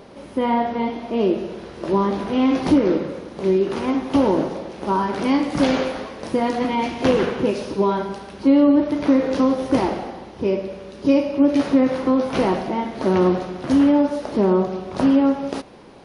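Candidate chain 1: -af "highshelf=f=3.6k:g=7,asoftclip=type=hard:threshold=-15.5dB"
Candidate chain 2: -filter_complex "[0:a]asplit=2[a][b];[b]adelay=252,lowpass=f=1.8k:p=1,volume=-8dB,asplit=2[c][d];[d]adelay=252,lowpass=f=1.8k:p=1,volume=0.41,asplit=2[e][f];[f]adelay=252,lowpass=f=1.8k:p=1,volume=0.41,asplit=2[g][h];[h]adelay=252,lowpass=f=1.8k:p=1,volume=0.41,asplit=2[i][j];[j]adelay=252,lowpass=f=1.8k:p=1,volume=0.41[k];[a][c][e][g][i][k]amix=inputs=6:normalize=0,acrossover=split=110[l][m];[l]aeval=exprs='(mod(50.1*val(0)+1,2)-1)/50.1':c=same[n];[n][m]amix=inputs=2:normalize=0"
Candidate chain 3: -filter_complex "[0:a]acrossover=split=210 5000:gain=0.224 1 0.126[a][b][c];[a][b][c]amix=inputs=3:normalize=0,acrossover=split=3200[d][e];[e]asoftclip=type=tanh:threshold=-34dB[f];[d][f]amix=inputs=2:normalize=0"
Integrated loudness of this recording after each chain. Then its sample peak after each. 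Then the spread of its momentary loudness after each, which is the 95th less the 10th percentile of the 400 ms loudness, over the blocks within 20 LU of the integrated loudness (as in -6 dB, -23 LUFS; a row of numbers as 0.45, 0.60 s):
-22.0, -20.0, -21.5 LUFS; -15.5, -4.5, -7.5 dBFS; 8, 8, 9 LU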